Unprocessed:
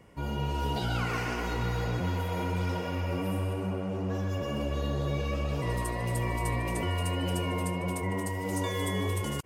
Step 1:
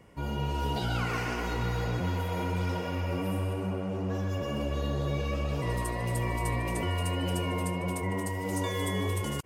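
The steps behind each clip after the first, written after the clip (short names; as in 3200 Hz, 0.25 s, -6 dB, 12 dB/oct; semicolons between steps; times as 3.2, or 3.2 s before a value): nothing audible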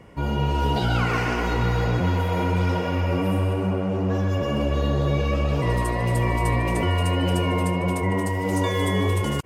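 high shelf 5300 Hz -8 dB; gain +8.5 dB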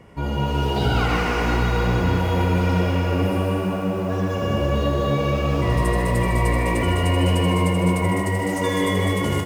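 on a send: loudspeakers at several distances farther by 28 m -6 dB, 70 m -4 dB; on the sum: lo-fi delay 0.154 s, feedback 80%, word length 7-bit, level -12.5 dB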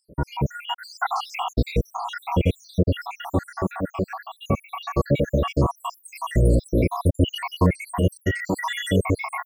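random spectral dropouts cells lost 83%; gain +3.5 dB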